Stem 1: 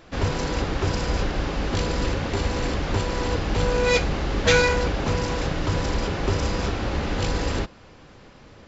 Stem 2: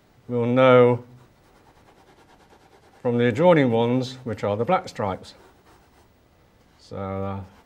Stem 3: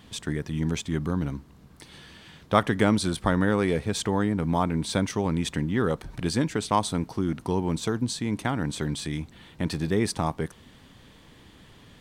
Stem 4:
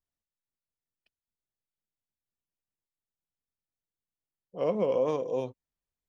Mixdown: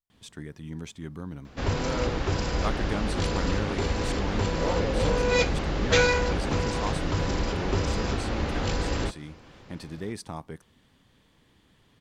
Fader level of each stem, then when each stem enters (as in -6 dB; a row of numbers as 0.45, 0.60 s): -3.0, -19.0, -10.5, -5.0 dB; 1.45, 1.25, 0.10, 0.00 s